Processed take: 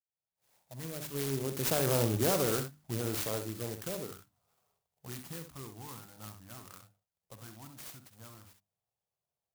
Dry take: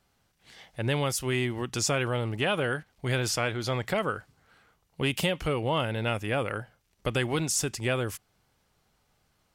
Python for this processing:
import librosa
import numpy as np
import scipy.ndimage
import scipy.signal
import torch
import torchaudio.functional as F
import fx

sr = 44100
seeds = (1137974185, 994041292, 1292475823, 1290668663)

p1 = fx.fade_in_head(x, sr, length_s=1.62)
p2 = fx.doppler_pass(p1, sr, speed_mps=34, closest_m=9.2, pass_at_s=2.06)
p3 = scipy.signal.sosfilt(scipy.signal.butter(2, 110.0, 'highpass', fs=sr, output='sos'), p2)
p4 = fx.hum_notches(p3, sr, base_hz=50, count=6)
p5 = fx.over_compress(p4, sr, threshold_db=-41.0, ratio=-1.0)
p6 = p4 + (p5 * librosa.db_to_amplitude(-2.5))
p7 = fx.env_phaser(p6, sr, low_hz=280.0, high_hz=3200.0, full_db=-28.0)
p8 = p7 + fx.room_early_taps(p7, sr, ms=(46, 66), db=(-14.5, -8.5), dry=0)
p9 = fx.clock_jitter(p8, sr, seeds[0], jitter_ms=0.14)
y = p9 * librosa.db_to_amplitude(1.5)